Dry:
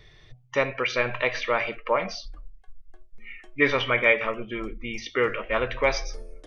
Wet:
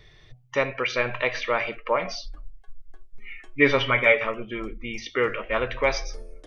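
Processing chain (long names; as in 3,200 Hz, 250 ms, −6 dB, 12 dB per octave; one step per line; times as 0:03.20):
0:02.04–0:04.24: comb filter 7.3 ms, depth 67%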